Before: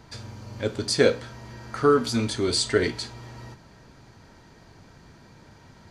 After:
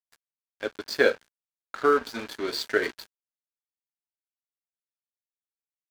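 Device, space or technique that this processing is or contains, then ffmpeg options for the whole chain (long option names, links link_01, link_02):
pocket radio on a weak battery: -af "highpass=360,lowpass=4200,aeval=exprs='sgn(val(0))*max(abs(val(0))-0.0158,0)':channel_layout=same,equalizer=frequency=1600:width_type=o:width=0.26:gain=7"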